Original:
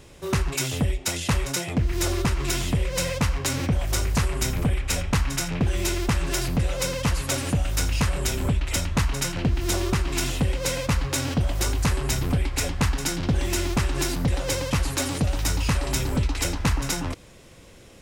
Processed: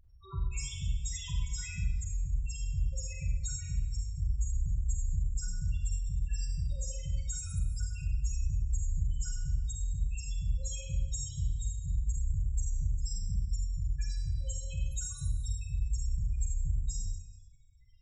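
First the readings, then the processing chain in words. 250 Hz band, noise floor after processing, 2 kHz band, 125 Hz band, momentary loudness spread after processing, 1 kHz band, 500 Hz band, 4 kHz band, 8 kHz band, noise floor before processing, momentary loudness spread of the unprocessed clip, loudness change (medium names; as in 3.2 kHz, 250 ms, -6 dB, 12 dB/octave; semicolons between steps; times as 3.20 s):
-24.0 dB, -51 dBFS, -23.0 dB, -9.5 dB, 3 LU, under -30 dB, -30.5 dB, -19.5 dB, -12.0 dB, -48 dBFS, 2 LU, -10.5 dB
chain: amplifier tone stack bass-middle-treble 10-0-10; loudest bins only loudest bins 4; Schroeder reverb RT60 1 s, combs from 33 ms, DRR -0.5 dB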